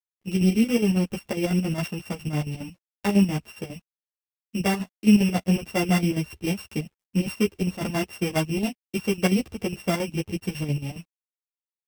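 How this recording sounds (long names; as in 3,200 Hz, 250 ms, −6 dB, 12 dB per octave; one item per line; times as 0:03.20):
a buzz of ramps at a fixed pitch in blocks of 16 samples
chopped level 7.3 Hz, depth 65%, duty 60%
a quantiser's noise floor 12 bits, dither none
a shimmering, thickened sound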